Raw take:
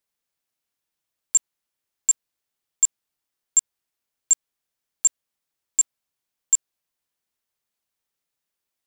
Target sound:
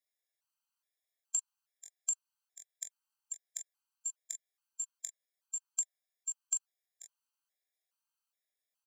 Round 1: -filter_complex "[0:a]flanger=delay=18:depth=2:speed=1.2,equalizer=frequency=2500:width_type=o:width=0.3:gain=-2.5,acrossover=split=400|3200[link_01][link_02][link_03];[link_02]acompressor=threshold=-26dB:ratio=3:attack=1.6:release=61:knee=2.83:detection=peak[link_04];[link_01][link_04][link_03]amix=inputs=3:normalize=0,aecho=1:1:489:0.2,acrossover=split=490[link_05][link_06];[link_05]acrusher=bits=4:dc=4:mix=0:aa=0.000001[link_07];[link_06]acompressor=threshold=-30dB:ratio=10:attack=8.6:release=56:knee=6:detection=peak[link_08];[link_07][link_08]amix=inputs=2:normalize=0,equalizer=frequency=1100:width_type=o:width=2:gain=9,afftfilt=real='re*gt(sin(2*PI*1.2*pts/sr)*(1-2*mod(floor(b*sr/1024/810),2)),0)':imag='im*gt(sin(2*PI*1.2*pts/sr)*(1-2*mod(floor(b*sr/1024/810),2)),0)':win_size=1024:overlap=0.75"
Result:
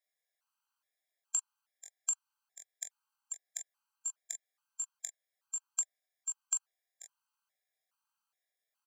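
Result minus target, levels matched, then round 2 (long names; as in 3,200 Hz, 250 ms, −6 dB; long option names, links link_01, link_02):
1,000 Hz band +8.0 dB
-filter_complex "[0:a]flanger=delay=18:depth=2:speed=1.2,equalizer=frequency=2500:width_type=o:width=0.3:gain=-2.5,acrossover=split=400|3200[link_01][link_02][link_03];[link_02]acompressor=threshold=-26dB:ratio=3:attack=1.6:release=61:knee=2.83:detection=peak[link_04];[link_01][link_04][link_03]amix=inputs=3:normalize=0,aecho=1:1:489:0.2,acrossover=split=490[link_05][link_06];[link_05]acrusher=bits=4:dc=4:mix=0:aa=0.000001[link_07];[link_06]acompressor=threshold=-30dB:ratio=10:attack=8.6:release=56:knee=6:detection=peak[link_08];[link_07][link_08]amix=inputs=2:normalize=0,afftfilt=real='re*gt(sin(2*PI*1.2*pts/sr)*(1-2*mod(floor(b*sr/1024/810),2)),0)':imag='im*gt(sin(2*PI*1.2*pts/sr)*(1-2*mod(floor(b*sr/1024/810),2)),0)':win_size=1024:overlap=0.75"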